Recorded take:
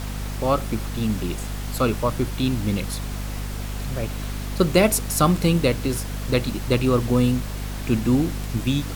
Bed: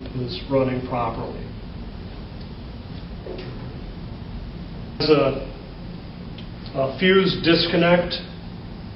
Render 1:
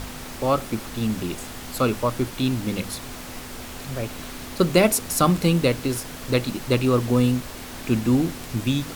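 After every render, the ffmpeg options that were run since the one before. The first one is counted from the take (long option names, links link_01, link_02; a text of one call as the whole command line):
ffmpeg -i in.wav -af "bandreject=frequency=50:width_type=h:width=6,bandreject=frequency=100:width_type=h:width=6,bandreject=frequency=150:width_type=h:width=6,bandreject=frequency=200:width_type=h:width=6" out.wav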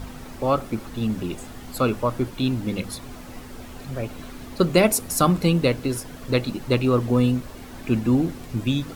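ffmpeg -i in.wav -af "afftdn=noise_reduction=9:noise_floor=-37" out.wav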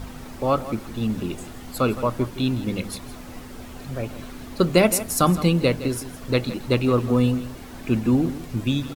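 ffmpeg -i in.wav -af "aecho=1:1:164:0.188" out.wav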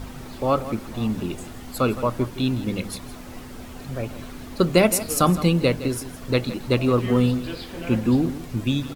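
ffmpeg -i in.wav -i bed.wav -filter_complex "[1:a]volume=-18dB[link_01];[0:a][link_01]amix=inputs=2:normalize=0" out.wav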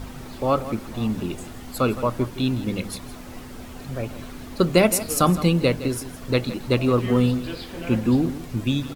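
ffmpeg -i in.wav -af anull out.wav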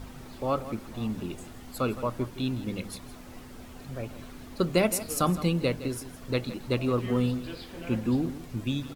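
ffmpeg -i in.wav -af "volume=-7dB" out.wav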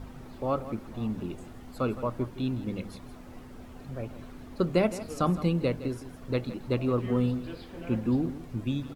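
ffmpeg -i in.wav -filter_complex "[0:a]highshelf=frequency=2200:gain=-9,acrossover=split=7700[link_01][link_02];[link_02]acompressor=threshold=-56dB:ratio=4:attack=1:release=60[link_03];[link_01][link_03]amix=inputs=2:normalize=0" out.wav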